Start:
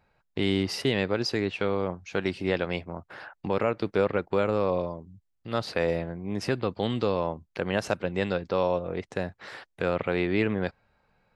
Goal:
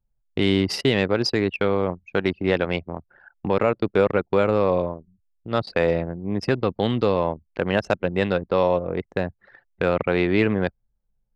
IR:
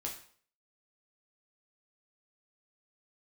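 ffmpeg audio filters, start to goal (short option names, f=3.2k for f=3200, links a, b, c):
-af "anlmdn=6.31,acontrast=50"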